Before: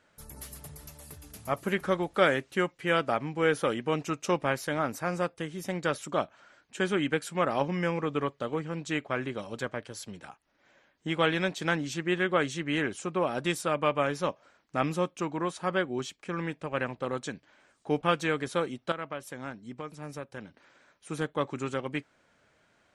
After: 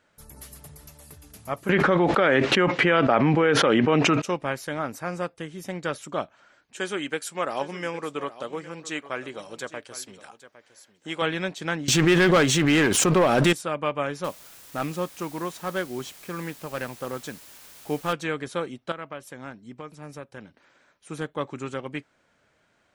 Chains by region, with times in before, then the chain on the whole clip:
1.69–4.22 s: band-pass 150–3100 Hz + level flattener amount 100%
6.76–11.22 s: tone controls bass -10 dB, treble +7 dB + delay 809 ms -15.5 dB
11.88–13.53 s: waveshaping leveller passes 3 + swell ahead of each attack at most 21 dB/s
14.24–18.13 s: CVSD coder 64 kbps + word length cut 8-bit, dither triangular
whole clip: none

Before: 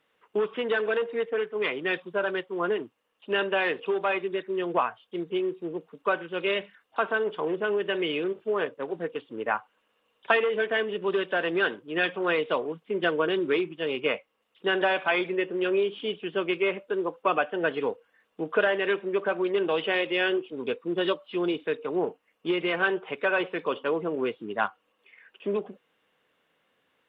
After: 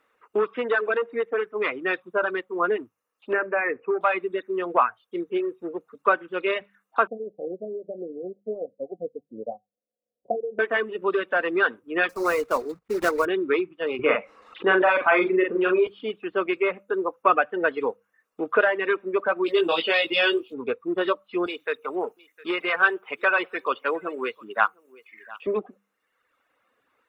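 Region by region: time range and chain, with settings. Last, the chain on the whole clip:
3.33–4.01 s: block-companded coder 7-bit + Chebyshev low-pass 2.4 kHz, order 6 + dynamic bell 930 Hz, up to -5 dB, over -43 dBFS, Q 2.2
7.07–10.59 s: transient shaper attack +3 dB, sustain -4 dB + rippled Chebyshev low-pass 750 Hz, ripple 9 dB
12.09–13.26 s: block-companded coder 3-bit + treble shelf 2.7 kHz -10.5 dB
13.99–15.87 s: low-pass 3.2 kHz + doubling 43 ms -4 dB + level flattener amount 50%
19.46–20.54 s: resonant high shelf 2.6 kHz +12 dB, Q 1.5 + doubling 18 ms -3 dB
21.46–25.47 s: tilt EQ +3 dB/octave + delay 707 ms -20 dB
whole clip: hum notches 50/100/150/200 Hz; reverb removal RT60 1.1 s; graphic EQ with 31 bands 160 Hz -12 dB, 1.25 kHz +7 dB, 3.15 kHz -11 dB; trim +3.5 dB

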